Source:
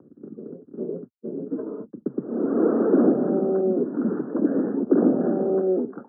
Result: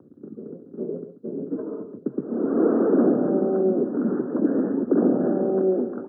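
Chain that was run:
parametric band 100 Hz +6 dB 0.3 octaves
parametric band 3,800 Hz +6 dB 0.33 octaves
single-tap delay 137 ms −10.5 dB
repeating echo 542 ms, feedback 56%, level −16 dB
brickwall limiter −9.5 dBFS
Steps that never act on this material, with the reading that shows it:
parametric band 3,800 Hz: nothing at its input above 1,400 Hz

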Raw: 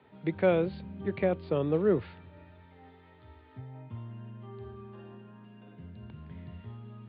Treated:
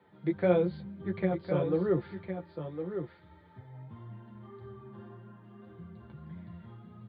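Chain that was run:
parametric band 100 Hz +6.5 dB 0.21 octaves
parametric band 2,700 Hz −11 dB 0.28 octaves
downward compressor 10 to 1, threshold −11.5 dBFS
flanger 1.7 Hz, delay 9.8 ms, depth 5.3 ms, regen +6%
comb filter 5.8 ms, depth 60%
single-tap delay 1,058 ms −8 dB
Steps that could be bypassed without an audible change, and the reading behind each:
downward compressor, threshold −11.5 dBFS: peak of its input −13.5 dBFS

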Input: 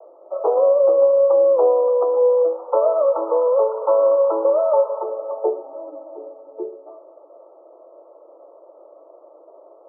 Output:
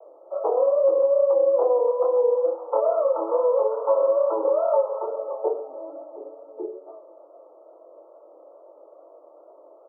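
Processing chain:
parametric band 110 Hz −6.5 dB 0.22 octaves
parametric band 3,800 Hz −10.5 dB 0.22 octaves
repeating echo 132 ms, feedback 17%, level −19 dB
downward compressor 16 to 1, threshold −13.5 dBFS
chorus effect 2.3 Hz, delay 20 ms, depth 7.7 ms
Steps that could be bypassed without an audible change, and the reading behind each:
parametric band 110 Hz: nothing at its input below 320 Hz
parametric band 3,800 Hz: nothing at its input above 1,400 Hz

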